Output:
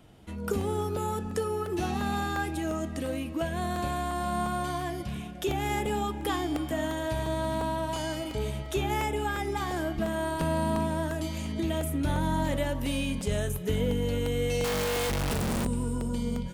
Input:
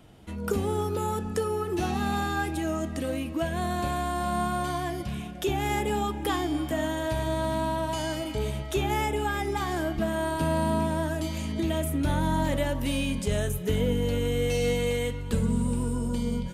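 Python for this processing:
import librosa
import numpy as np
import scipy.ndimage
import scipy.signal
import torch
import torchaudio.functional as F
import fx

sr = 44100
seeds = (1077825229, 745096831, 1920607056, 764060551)

y = fx.clip_1bit(x, sr, at=(14.64, 15.65))
y = fx.buffer_crackle(y, sr, first_s=0.61, period_s=0.35, block=64, kind='repeat')
y = y * 10.0 ** (-2.0 / 20.0)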